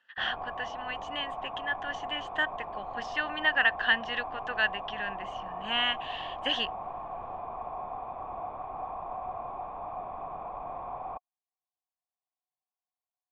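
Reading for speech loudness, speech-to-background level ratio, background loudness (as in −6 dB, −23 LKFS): −31.0 LKFS, 8.0 dB, −39.0 LKFS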